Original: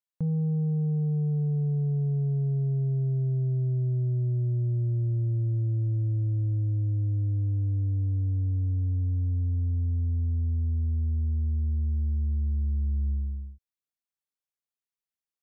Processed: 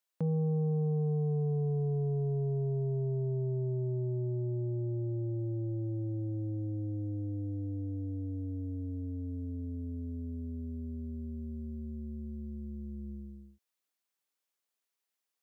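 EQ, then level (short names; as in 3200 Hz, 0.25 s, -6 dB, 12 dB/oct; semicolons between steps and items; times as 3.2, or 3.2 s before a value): HPF 280 Hz 12 dB/oct; +6.5 dB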